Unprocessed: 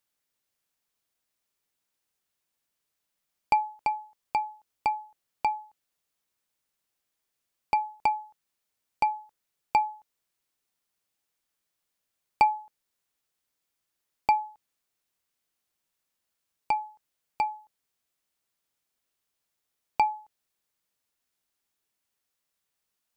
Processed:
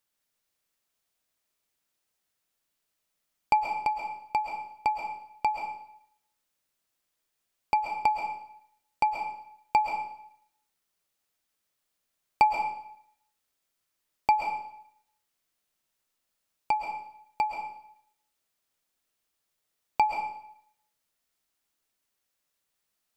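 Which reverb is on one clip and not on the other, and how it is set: algorithmic reverb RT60 0.7 s, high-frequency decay 0.95×, pre-delay 90 ms, DRR 3 dB

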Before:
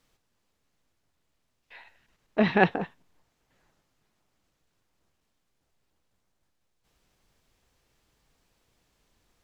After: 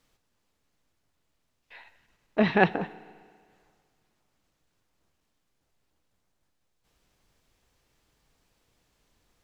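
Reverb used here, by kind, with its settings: FDN reverb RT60 1.9 s, low-frequency decay 0.9×, high-frequency decay 1×, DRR 17.5 dB

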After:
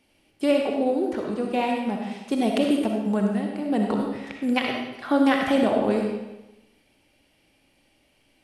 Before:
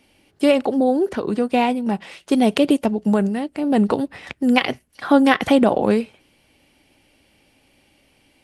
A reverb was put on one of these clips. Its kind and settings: algorithmic reverb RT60 1 s, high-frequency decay 0.9×, pre-delay 20 ms, DRR 1 dB; trim -7.5 dB

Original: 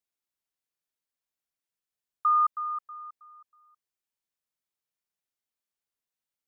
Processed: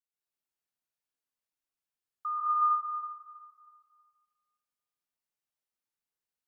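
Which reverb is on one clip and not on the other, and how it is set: plate-style reverb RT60 1.5 s, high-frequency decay 0.65×, pre-delay 115 ms, DRR -8.5 dB; trim -11 dB

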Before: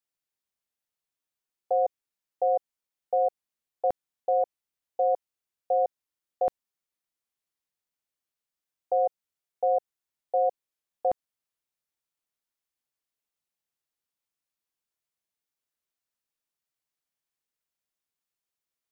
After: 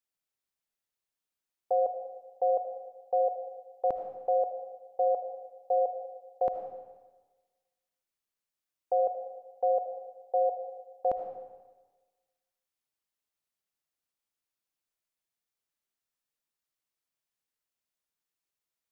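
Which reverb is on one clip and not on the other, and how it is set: algorithmic reverb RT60 1.3 s, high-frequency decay 0.9×, pre-delay 35 ms, DRR 6 dB; trim -2 dB

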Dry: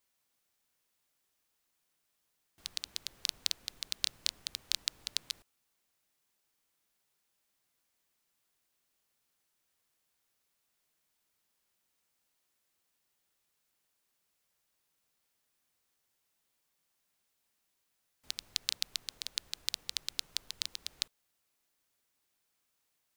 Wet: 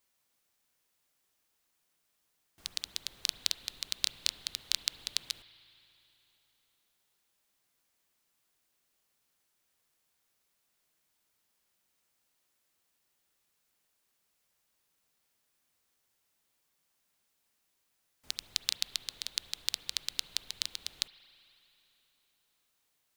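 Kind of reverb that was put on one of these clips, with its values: spring tank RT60 3.4 s, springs 36/45 ms, chirp 35 ms, DRR 14.5 dB; trim +2 dB

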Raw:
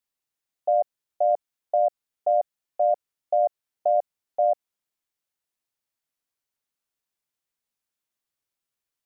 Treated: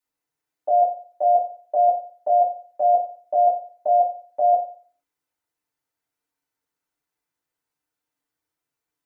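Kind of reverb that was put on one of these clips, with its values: FDN reverb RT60 0.44 s, low-frequency decay 0.8×, high-frequency decay 0.3×, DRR -8.5 dB; trim -4 dB

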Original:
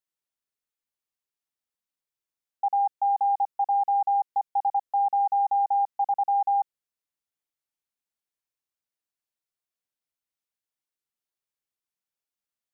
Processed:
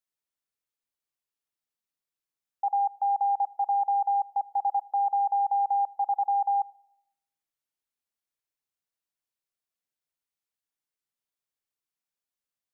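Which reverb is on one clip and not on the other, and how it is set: simulated room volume 2800 m³, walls furnished, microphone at 0.3 m; trim -1.5 dB

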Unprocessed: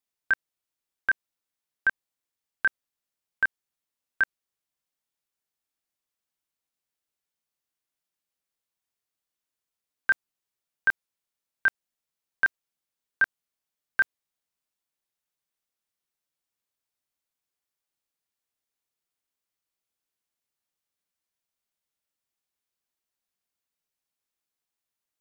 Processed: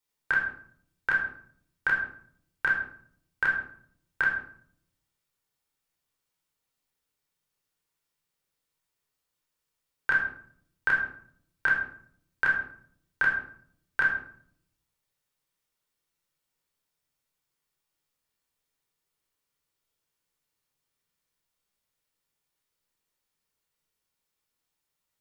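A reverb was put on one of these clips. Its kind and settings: simulated room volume 1000 m³, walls furnished, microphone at 4.5 m

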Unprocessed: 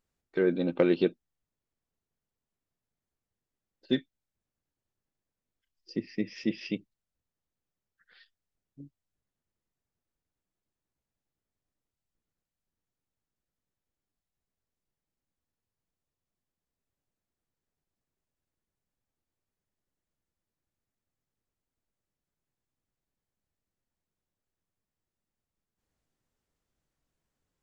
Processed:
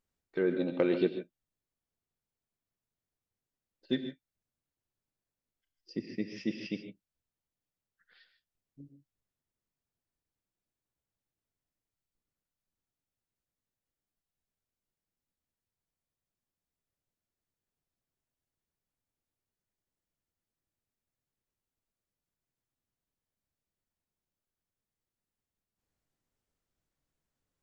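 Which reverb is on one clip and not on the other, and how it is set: gated-style reverb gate 170 ms rising, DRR 8 dB; trim -4 dB

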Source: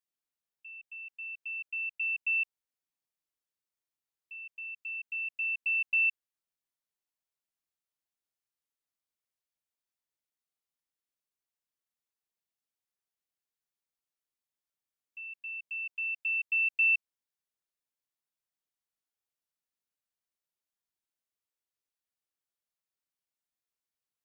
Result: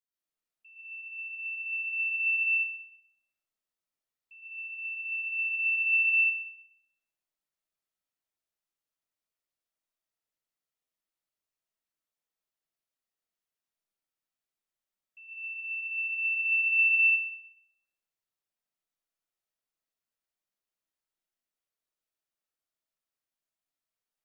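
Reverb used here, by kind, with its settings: algorithmic reverb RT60 1.2 s, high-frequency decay 0.5×, pre-delay 90 ms, DRR -8.5 dB; trim -8 dB

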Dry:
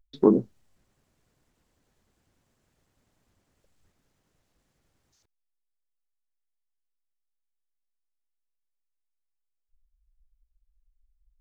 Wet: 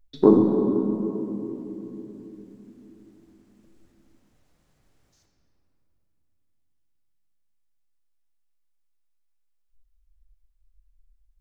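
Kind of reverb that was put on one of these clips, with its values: simulated room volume 210 m³, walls hard, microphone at 0.44 m; trim +2.5 dB

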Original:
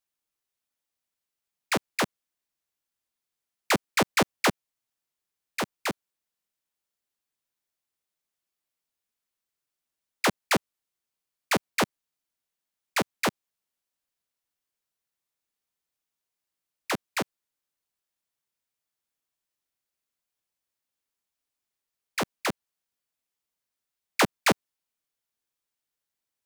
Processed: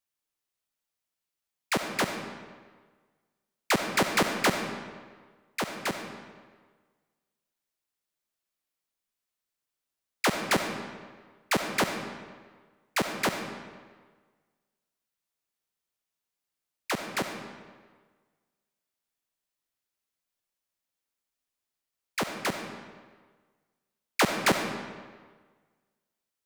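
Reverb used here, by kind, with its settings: algorithmic reverb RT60 1.5 s, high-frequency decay 0.8×, pre-delay 25 ms, DRR 5 dB; trim -1.5 dB

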